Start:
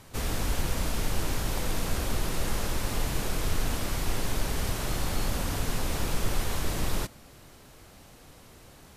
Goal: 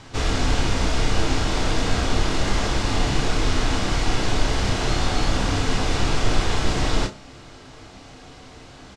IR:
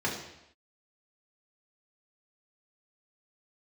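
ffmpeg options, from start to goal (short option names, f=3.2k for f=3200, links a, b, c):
-filter_complex "[0:a]lowpass=f=7.1k:w=0.5412,lowpass=f=7.1k:w=1.3066,asplit=2[a][b];[b]adelay=31,volume=-7dB[c];[a][c]amix=inputs=2:normalize=0,asplit=2[d][e];[1:a]atrim=start_sample=2205,atrim=end_sample=6615,asetrate=79380,aresample=44100[f];[e][f]afir=irnorm=-1:irlink=0,volume=-9.5dB[g];[d][g]amix=inputs=2:normalize=0,volume=6.5dB"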